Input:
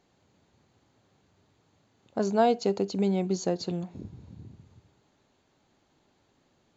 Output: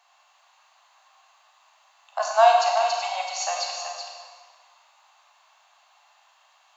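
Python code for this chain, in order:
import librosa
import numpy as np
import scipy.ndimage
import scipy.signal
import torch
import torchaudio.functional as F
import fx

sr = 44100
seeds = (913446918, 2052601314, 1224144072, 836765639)

p1 = scipy.signal.sosfilt(scipy.signal.butter(12, 650.0, 'highpass', fs=sr, output='sos'), x)
p2 = fx.doubler(p1, sr, ms=14.0, db=-12)
p3 = fx.small_body(p2, sr, hz=(1100.0, 2700.0), ring_ms=20, db=9)
p4 = p3 + fx.echo_single(p3, sr, ms=379, db=-8.0, dry=0)
p5 = fx.rev_schroeder(p4, sr, rt60_s=1.3, comb_ms=31, drr_db=0.5)
y = p5 * 10.0 ** (7.5 / 20.0)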